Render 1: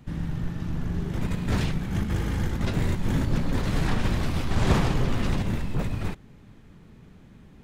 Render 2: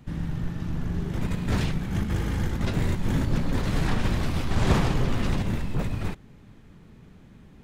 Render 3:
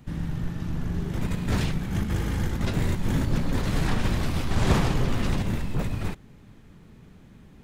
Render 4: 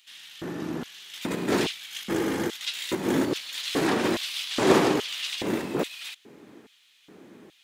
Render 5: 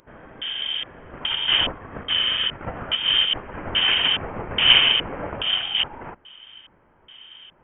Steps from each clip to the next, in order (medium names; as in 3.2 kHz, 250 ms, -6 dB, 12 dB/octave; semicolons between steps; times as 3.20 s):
no audible change
treble shelf 6.8 kHz +4 dB
LFO high-pass square 1.2 Hz 340–3200 Hz; trim +4 dB
frequency inversion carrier 3.4 kHz; trim +4.5 dB